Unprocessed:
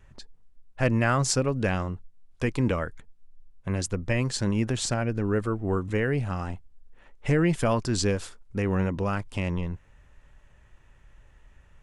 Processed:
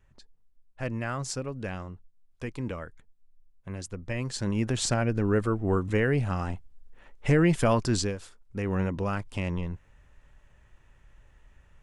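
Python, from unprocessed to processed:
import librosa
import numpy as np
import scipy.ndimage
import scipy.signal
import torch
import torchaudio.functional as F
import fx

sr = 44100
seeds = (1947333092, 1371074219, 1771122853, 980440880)

y = fx.gain(x, sr, db=fx.line((3.9, -9.0), (4.88, 1.0), (7.94, 1.0), (8.16, -9.0), (8.8, -2.0)))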